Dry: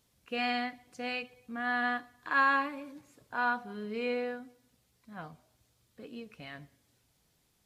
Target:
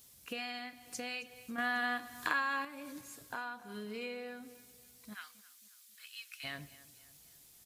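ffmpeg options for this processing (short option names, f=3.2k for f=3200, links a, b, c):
-filter_complex "[0:a]asplit=3[a][b][c];[a]afade=t=out:st=5.13:d=0.02[d];[b]highpass=f=1.5k:w=0.5412,highpass=f=1.5k:w=1.3066,afade=t=in:st=5.13:d=0.02,afade=t=out:st=6.43:d=0.02[e];[c]afade=t=in:st=6.43:d=0.02[f];[d][e][f]amix=inputs=3:normalize=0,acompressor=threshold=-42dB:ratio=12,asplit=2[g][h];[h]aecho=0:1:270|540|810|1080:0.106|0.0498|0.0234|0.011[i];[g][i]amix=inputs=2:normalize=0,asettb=1/sr,asplit=3[j][k][l];[j]atrim=end=1.584[m];[k]atrim=start=1.58:end=2.65,asetpts=PTS-STARTPTS,afade=t=in:d=0.004:c=qsin,afade=t=out:st=1.066:d=0.004:c=qsin,acontrast=87[n];[l]atrim=start=2.646[o];[m][n]acrossfade=d=0.004:c1=hsin:c2=qsin[p];[p][o]acrossfade=d=0.004:c1=qsin:c2=hsin,crystalizer=i=3.5:c=0,volume=2dB"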